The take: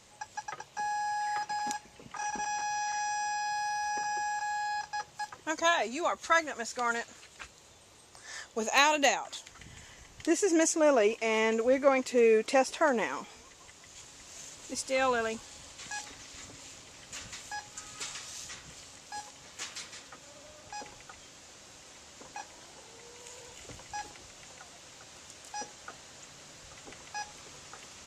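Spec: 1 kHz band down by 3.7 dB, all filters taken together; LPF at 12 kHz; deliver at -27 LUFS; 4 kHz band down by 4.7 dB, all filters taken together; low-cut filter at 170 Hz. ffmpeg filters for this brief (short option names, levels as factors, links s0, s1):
-af "highpass=170,lowpass=12000,equalizer=f=1000:t=o:g=-4.5,equalizer=f=4000:t=o:g=-6,volume=1.88"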